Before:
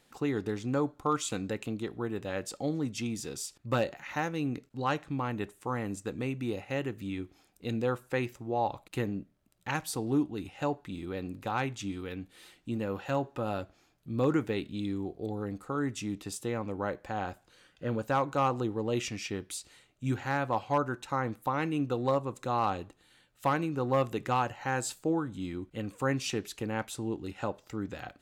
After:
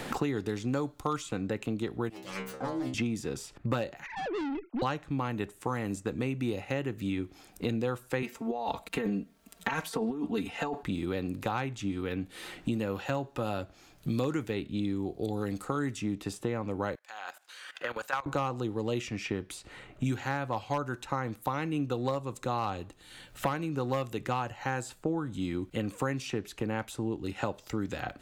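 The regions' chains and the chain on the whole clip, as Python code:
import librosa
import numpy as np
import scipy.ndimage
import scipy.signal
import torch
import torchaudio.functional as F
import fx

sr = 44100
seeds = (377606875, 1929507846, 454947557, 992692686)

y = fx.chain(x, sr, fx.self_delay(depth_ms=0.5),
    fx.low_shelf(hz=200.0, db=-7.5),
    fx.stiff_resonator(f0_hz=63.0, decay_s=0.58, stiffness=0.002), at=(2.09, 2.94))
y = fx.chain(y, sr, fx.sine_speech(),
    fx.tube_stage(drive_db=41.0, bias=0.2),
    fx.air_absorb(metres=52.0), at=(4.06, 4.82))
y = fx.chain(y, sr, fx.highpass(hz=330.0, slope=6),
    fx.comb(ms=4.4, depth=0.96),
    fx.over_compress(threshold_db=-35.0, ratio=-1.0), at=(8.22, 10.83))
y = fx.chain(y, sr, fx.highpass(hz=1200.0, slope=12),
    fx.level_steps(step_db=17), at=(16.95, 18.26))
y = fx.low_shelf(y, sr, hz=63.0, db=7.0)
y = fx.band_squash(y, sr, depth_pct=100)
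y = y * 10.0 ** (-1.0 / 20.0)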